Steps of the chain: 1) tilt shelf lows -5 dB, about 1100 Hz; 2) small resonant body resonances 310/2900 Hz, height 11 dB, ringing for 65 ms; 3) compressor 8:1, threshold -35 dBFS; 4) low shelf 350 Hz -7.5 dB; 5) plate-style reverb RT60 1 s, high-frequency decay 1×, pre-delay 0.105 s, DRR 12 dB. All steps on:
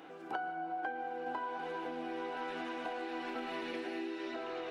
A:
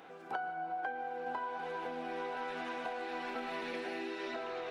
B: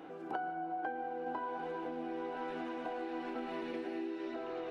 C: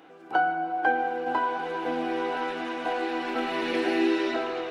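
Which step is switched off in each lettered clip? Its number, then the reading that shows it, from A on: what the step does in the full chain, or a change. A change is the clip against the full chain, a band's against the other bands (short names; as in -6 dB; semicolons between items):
2, 250 Hz band -4.5 dB; 1, 4 kHz band -7.5 dB; 3, mean gain reduction 10.5 dB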